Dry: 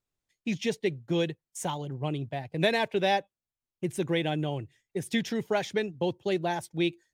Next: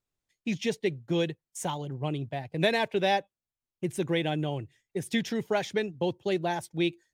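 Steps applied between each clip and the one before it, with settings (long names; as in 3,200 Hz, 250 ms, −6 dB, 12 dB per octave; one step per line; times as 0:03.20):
no processing that can be heard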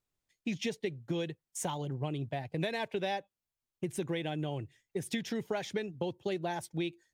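downward compressor, threshold −31 dBFS, peak gain reduction 11.5 dB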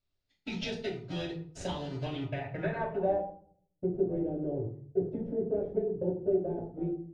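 in parallel at −7 dB: sample-rate reduction 1,100 Hz, jitter 0%
on the sum: low-pass filter sweep 4,400 Hz → 450 Hz, 0:01.98–0:03.47
convolution reverb RT60 0.55 s, pre-delay 3 ms, DRR −2 dB
level −8.5 dB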